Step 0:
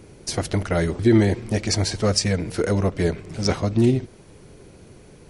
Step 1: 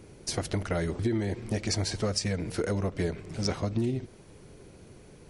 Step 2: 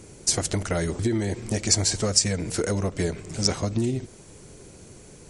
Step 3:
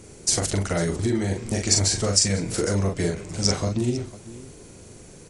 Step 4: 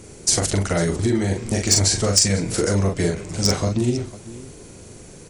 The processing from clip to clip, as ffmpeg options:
-af "acompressor=threshold=-20dB:ratio=10,volume=-4.5dB"
-af "equalizer=f=7.5k:t=o:w=0.82:g=13.5,volume=3.5dB"
-af "aecho=1:1:41|499:0.631|0.141"
-af "asoftclip=type=hard:threshold=-11dB,volume=3.5dB"

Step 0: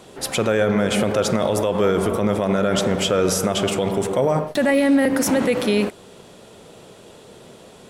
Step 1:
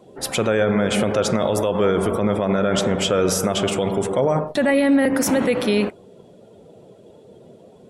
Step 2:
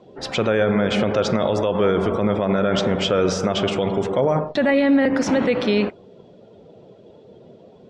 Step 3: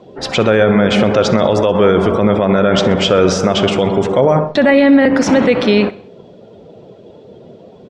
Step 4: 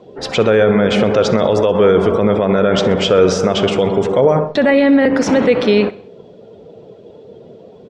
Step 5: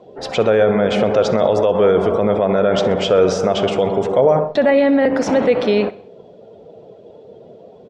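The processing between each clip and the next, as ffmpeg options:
-af "afftdn=nr=16:nf=-42"
-af "lowpass=f=5.5k:w=0.5412,lowpass=f=5.5k:w=1.3066"
-af "aecho=1:1:64|128|192|256:0.106|0.0519|0.0254|0.0125,volume=7.5dB"
-af "equalizer=f=450:t=o:w=0.27:g=6,volume=-2.5dB"
-af "equalizer=f=680:t=o:w=0.86:g=7,volume=-5dB"

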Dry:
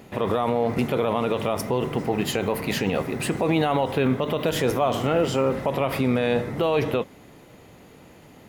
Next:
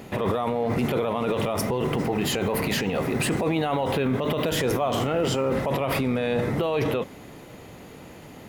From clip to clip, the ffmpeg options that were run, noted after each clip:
-af "alimiter=limit=-21dB:level=0:latency=1:release=16,volume=5dB"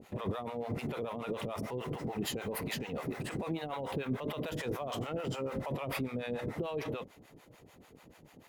-filter_complex "[0:a]aeval=exprs='sgn(val(0))*max(abs(val(0))-0.00224,0)':c=same,acrossover=split=580[a][b];[a]aeval=exprs='val(0)*(1-1/2+1/2*cos(2*PI*6.8*n/s))':c=same[c];[b]aeval=exprs='val(0)*(1-1/2-1/2*cos(2*PI*6.8*n/s))':c=same[d];[c][d]amix=inputs=2:normalize=0,volume=-7dB"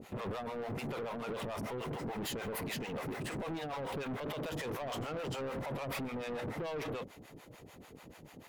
-af "asoftclip=type=tanh:threshold=-39.5dB,volume=4dB"

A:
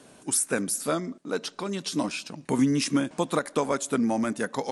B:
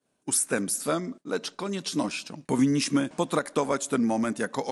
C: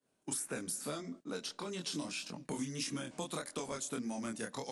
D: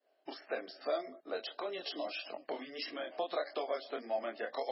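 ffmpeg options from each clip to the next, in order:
-af "agate=range=-33dB:threshold=-38dB:ratio=3:detection=peak"
-filter_complex "[0:a]flanger=delay=22.5:depth=5:speed=1.7,acrossover=split=160|2800[a][b][c];[a]acompressor=threshold=-48dB:ratio=4[d];[b]acompressor=threshold=-39dB:ratio=4[e];[c]acompressor=threshold=-36dB:ratio=4[f];[d][e][f]amix=inputs=3:normalize=0,volume=-1.5dB"
-af "highpass=f=430:w=0.5412,highpass=f=430:w=1.3066,equalizer=f=460:t=q:w=4:g=-4,equalizer=f=670:t=q:w=4:g=9,equalizer=f=950:t=q:w=4:g=-10,equalizer=f=1.4k:t=q:w=4:g=-7,equalizer=f=2.4k:t=q:w=4:g=-7,equalizer=f=3.6k:t=q:w=4:g=-8,lowpass=f=4.2k:w=0.5412,lowpass=f=4.2k:w=1.3066,volume=8dB" -ar 22050 -c:a libmp3lame -b:a 16k

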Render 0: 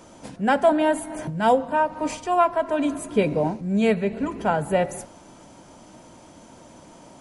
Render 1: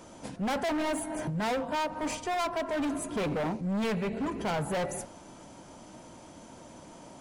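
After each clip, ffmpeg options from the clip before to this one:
-af "volume=26dB,asoftclip=hard,volume=-26dB,volume=-2dB"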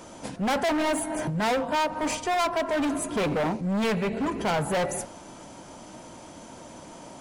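-af "lowshelf=f=350:g=-3,volume=6dB"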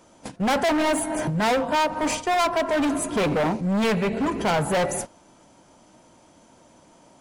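-af "agate=range=-13dB:threshold=-34dB:ratio=16:detection=peak,volume=3.5dB"

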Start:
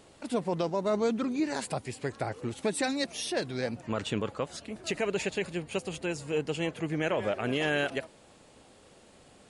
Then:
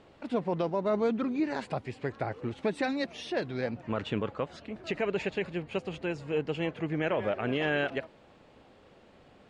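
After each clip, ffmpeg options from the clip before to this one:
-af "lowpass=3k"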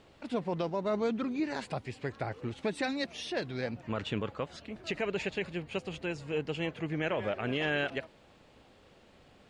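-af "highshelf=f=6.2k:g=-9,crystalizer=i=4:c=0,lowshelf=f=120:g=6,volume=-4dB"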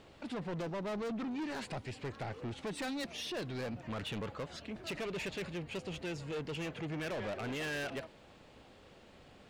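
-af "asoftclip=type=tanh:threshold=-37dB,volume=1.5dB"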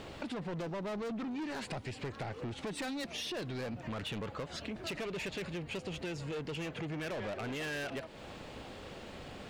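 -af "acompressor=threshold=-50dB:ratio=5,volume=11dB"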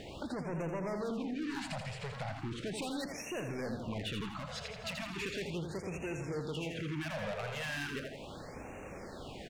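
-af "aecho=1:1:83|166|249|332|415|498|581:0.501|0.266|0.141|0.0746|0.0395|0.021|0.0111,afftfilt=real='re*(1-between(b*sr/1024,290*pow(4100/290,0.5+0.5*sin(2*PI*0.37*pts/sr))/1.41,290*pow(4100/290,0.5+0.5*sin(2*PI*0.37*pts/sr))*1.41))':imag='im*(1-between(b*sr/1024,290*pow(4100/290,0.5+0.5*sin(2*PI*0.37*pts/sr))/1.41,290*pow(4100/290,0.5+0.5*sin(2*PI*0.37*pts/sr))*1.41))':win_size=1024:overlap=0.75"

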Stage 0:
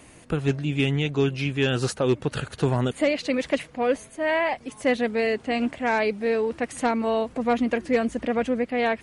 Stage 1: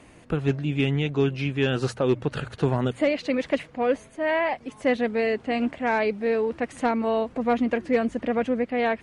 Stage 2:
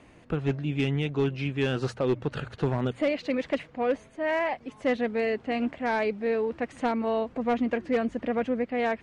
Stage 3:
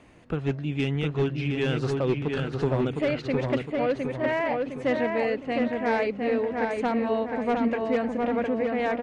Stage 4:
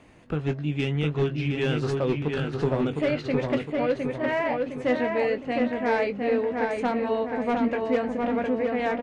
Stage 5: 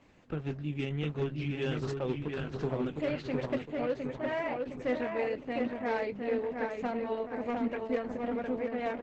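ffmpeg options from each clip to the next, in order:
-af "aemphasis=mode=reproduction:type=50kf,bandreject=f=60:t=h:w=6,bandreject=f=120:t=h:w=6"
-af "asoftclip=type=hard:threshold=-15.5dB,adynamicsmooth=sensitivity=2:basefreq=7.5k,volume=-3dB"
-filter_complex "[0:a]asplit=2[a][b];[b]adelay=710,lowpass=f=3k:p=1,volume=-3dB,asplit=2[c][d];[d]adelay=710,lowpass=f=3k:p=1,volume=0.49,asplit=2[e][f];[f]adelay=710,lowpass=f=3k:p=1,volume=0.49,asplit=2[g][h];[h]adelay=710,lowpass=f=3k:p=1,volume=0.49,asplit=2[i][j];[j]adelay=710,lowpass=f=3k:p=1,volume=0.49,asplit=2[k][l];[l]adelay=710,lowpass=f=3k:p=1,volume=0.49[m];[a][c][e][g][i][k][m]amix=inputs=7:normalize=0"
-filter_complex "[0:a]asplit=2[a][b];[b]adelay=20,volume=-9dB[c];[a][c]amix=inputs=2:normalize=0"
-af "volume=-7dB" -ar 48000 -c:a libopus -b:a 10k

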